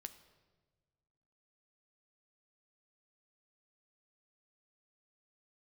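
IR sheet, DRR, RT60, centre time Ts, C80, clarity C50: 8.5 dB, non-exponential decay, 9 ms, 14.5 dB, 13.0 dB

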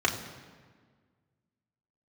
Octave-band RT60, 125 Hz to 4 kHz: 2.1, 2.0, 1.7, 1.5, 1.4, 1.1 seconds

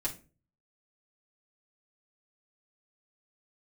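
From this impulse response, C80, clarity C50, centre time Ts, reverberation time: 20.0 dB, 13.0 dB, 12 ms, 0.35 s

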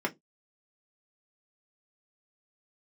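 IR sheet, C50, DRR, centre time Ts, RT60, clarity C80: 25.0 dB, −1.0 dB, 7 ms, non-exponential decay, 34.5 dB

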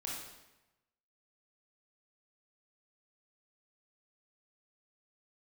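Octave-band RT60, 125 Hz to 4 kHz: 1.1, 1.0, 1.0, 1.0, 0.95, 0.85 seconds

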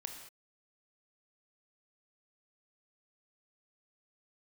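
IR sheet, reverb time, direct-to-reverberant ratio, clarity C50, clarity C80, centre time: non-exponential decay, 4.0 dB, 6.0 dB, 7.5 dB, 30 ms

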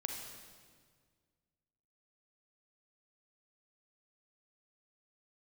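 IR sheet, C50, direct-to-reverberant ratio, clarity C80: 3.0 dB, 2.5 dB, 5.0 dB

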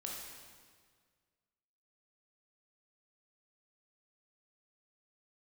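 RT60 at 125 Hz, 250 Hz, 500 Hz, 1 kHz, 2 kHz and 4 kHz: 2.0, 1.9, 1.8, 1.7, 1.6, 1.5 seconds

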